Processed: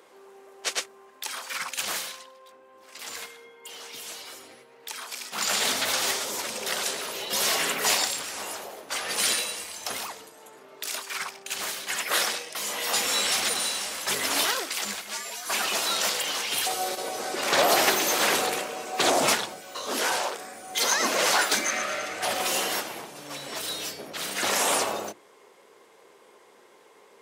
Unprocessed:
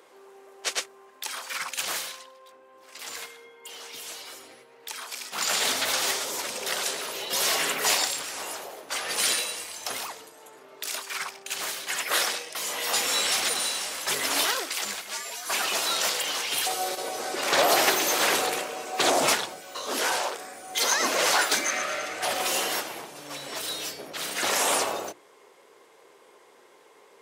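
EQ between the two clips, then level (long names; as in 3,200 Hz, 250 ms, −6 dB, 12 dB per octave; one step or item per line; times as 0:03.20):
low-shelf EQ 99 Hz +5 dB
parametric band 210 Hz +6.5 dB 0.21 octaves
0.0 dB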